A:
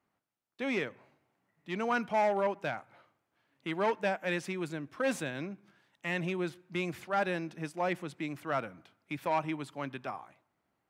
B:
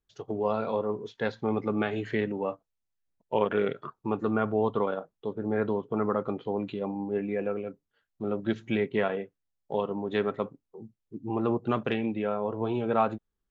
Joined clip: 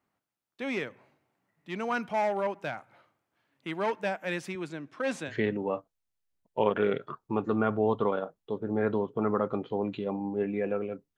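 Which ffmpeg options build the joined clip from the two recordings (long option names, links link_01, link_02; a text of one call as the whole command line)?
ffmpeg -i cue0.wav -i cue1.wav -filter_complex "[0:a]asettb=1/sr,asplit=3[link_01][link_02][link_03];[link_01]atrim=end=4.554[link_04];[link_02]atrim=start=4.55:end=5.34,asetpts=PTS-STARTPTS,afade=type=in:duration=0.004:curve=qsin,afade=type=out:start_time=0.786:duration=0.004:curve=qsin,highpass=140,lowpass=7800[link_05];[link_03]atrim=start=5.336[link_06];[link_04][link_05]acrossfade=duration=0.004:curve1=hsin:curve2=qsin[link_07];[link_07][link_06]acrossfade=duration=0.004:curve1=qsin:curve2=hsin,apad=whole_dur=11.17,atrim=end=11.17,atrim=end=5.34,asetpts=PTS-STARTPTS[link_08];[1:a]atrim=start=2.01:end=7.92,asetpts=PTS-STARTPTS[link_09];[link_08][link_09]acrossfade=duration=0.08:curve1=tri:curve2=tri" out.wav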